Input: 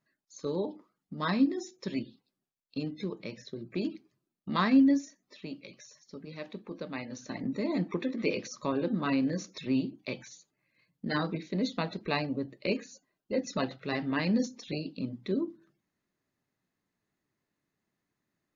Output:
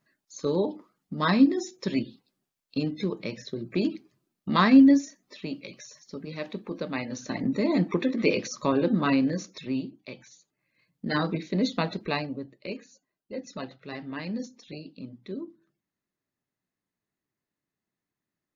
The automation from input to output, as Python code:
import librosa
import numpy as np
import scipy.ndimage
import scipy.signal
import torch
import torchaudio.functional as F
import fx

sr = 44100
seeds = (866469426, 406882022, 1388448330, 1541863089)

y = fx.gain(x, sr, db=fx.line((9.02, 6.5), (10.12, -5.0), (11.3, 5.0), (11.94, 5.0), (12.57, -5.5)))